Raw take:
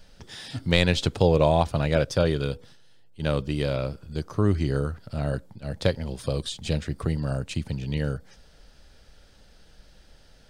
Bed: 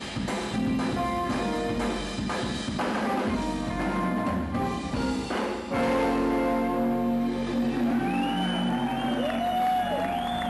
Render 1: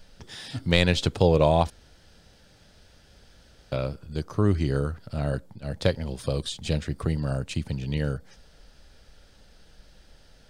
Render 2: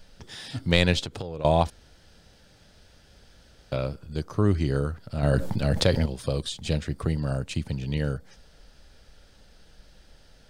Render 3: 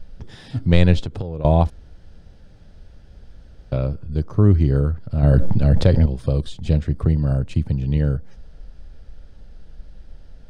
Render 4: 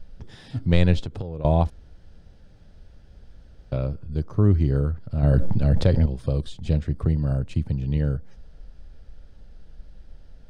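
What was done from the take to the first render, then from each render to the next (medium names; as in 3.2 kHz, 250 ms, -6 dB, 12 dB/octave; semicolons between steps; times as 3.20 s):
1.70–3.72 s: room tone
0.99–1.45 s: compression 8:1, threshold -30 dBFS; 5.23–6.06 s: level flattener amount 70%
tilt EQ -3 dB/octave
trim -4 dB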